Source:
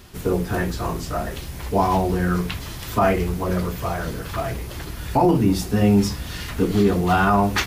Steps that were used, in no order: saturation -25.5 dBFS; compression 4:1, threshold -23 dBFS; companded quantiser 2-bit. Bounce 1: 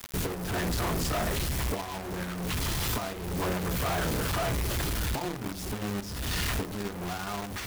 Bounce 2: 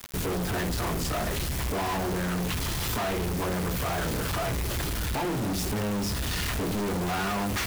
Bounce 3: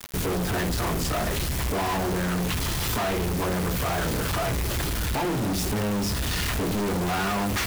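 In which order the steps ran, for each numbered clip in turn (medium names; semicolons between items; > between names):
companded quantiser > compression > saturation; compression > companded quantiser > saturation; compression > saturation > companded quantiser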